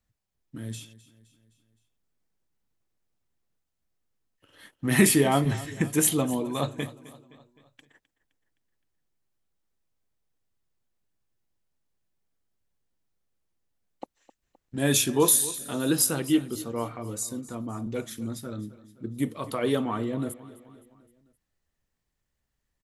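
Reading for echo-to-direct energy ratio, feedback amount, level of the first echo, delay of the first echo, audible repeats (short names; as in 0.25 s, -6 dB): -16.5 dB, 53%, -18.0 dB, 0.259 s, 4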